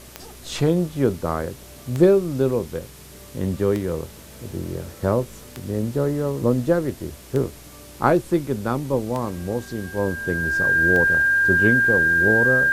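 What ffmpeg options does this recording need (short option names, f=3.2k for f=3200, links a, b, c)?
-af "adeclick=t=4,bandreject=f=62.2:t=h:w=4,bandreject=f=124.4:t=h:w=4,bandreject=f=186.6:t=h:w=4,bandreject=f=248.8:t=h:w=4,bandreject=f=311:t=h:w=4,bandreject=f=373.2:t=h:w=4,bandreject=f=1.6k:w=30,afwtdn=0.0056"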